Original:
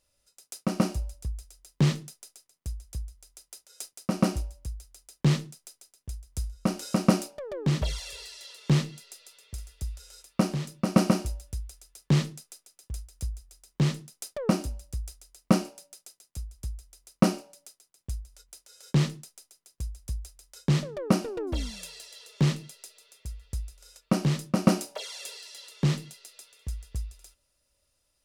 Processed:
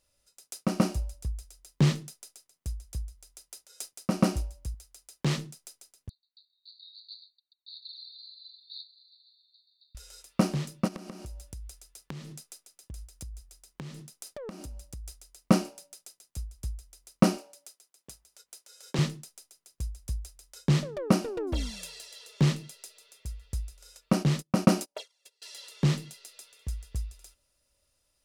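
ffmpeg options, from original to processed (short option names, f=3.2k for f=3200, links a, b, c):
-filter_complex "[0:a]asettb=1/sr,asplit=3[a][b][c];[a]atrim=end=4.744[d];[b]atrim=start=4.74:end=5.38,asetpts=PTS-STARTPTS,afade=t=in:d=0.004:c=qsin,afade=t=out:st=0.636:d=0.004:c=qsin,lowshelf=f=260:g=-8[e];[c]atrim=start=5.376[f];[d][e]acrossfade=d=0.004:c1=hsin:c2=qsin[g];[g][f]acrossfade=d=0.004:c1=qsin:c2=hsin,asettb=1/sr,asplit=3[h][i][j];[h]atrim=end=6.094[k];[i]atrim=start=6.09:end=9.95,asetpts=PTS-STARTPTS,afade=t=in:d=0.004:c=qsin,afade=t=out:st=3.856:d=0.004:c=qsin,asuperpass=centerf=4100:order=20:qfactor=4.1[l];[j]atrim=start=9.946[m];[k][l]acrossfade=d=0.004:c1=hsin:c2=qsin[n];[n][m]acrossfade=d=0.004:c1=qsin:c2=hsin,asplit=3[o][p][q];[o]afade=t=out:st=10.87:d=0.02[r];[p]acompressor=threshold=-37dB:ratio=20:attack=3.2:release=140:knee=1:detection=peak,afade=t=in:st=10.87:d=0.02,afade=t=out:st=15.07:d=0.02[s];[q]afade=t=in:st=15.07:d=0.02[t];[r][s][t]amix=inputs=3:normalize=0,asettb=1/sr,asplit=3[u][v][w];[u]atrim=end=17.374[x];[v]atrim=start=17.37:end=18.99,asetpts=PTS-STARTPTS,afade=t=in:d=0.004:c=qsin,afade=t=out:st=1.616:d=0.004:c=qsin,highpass=310[y];[w]atrim=start=18.986[z];[x][y]acrossfade=d=0.004:c1=hsin:c2=qsin[aa];[aa][z]acrossfade=d=0.004:c1=qsin:c2=hsin,asettb=1/sr,asplit=3[ab][ac][ad];[ab]atrim=end=24.134[ae];[ac]atrim=start=24.13:end=25.42,asetpts=PTS-STARTPTS,afade=t=in:d=0.004:c=qsin,afade=t=out:st=1.286:d=0.004:c=qsin,agate=range=-33dB:threshold=-37dB:ratio=16:release=100:detection=peak[af];[ad]atrim=start=25.416[ag];[ae][af]acrossfade=d=0.004:c1=hsin:c2=qsin[ah];[ah][ag]acrossfade=d=0.004:c1=qsin:c2=hsin"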